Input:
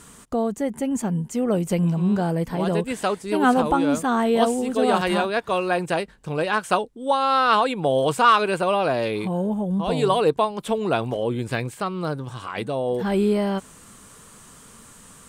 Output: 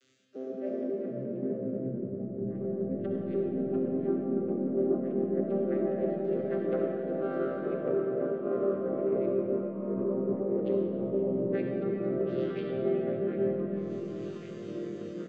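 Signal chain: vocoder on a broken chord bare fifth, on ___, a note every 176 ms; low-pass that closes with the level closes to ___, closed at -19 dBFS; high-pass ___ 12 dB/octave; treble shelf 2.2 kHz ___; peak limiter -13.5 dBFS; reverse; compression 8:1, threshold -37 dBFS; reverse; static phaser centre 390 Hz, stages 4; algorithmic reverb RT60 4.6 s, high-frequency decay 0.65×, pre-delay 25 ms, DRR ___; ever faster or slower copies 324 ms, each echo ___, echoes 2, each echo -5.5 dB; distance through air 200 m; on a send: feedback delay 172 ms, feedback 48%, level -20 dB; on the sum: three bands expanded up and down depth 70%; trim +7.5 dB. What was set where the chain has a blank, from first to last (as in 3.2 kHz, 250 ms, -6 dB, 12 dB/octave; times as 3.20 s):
C3, 350 Hz, 190 Hz, +4 dB, -2 dB, -2 st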